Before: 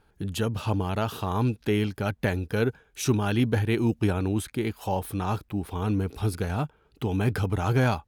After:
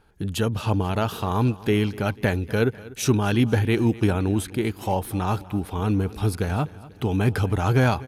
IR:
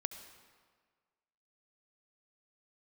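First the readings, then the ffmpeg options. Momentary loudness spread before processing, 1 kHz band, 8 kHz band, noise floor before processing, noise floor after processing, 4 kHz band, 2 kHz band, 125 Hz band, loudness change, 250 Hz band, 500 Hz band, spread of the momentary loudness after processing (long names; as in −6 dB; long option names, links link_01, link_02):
6 LU, +3.5 dB, +3.5 dB, −64 dBFS, −45 dBFS, +3.5 dB, +3.5 dB, +3.5 dB, +3.5 dB, +3.5 dB, +3.5 dB, 6 LU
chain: -filter_complex "[0:a]asplit=2[link_01][link_02];[link_02]aecho=0:1:245|490|735|980:0.106|0.0561|0.0298|0.0158[link_03];[link_01][link_03]amix=inputs=2:normalize=0,aresample=32000,aresample=44100,volume=3.5dB"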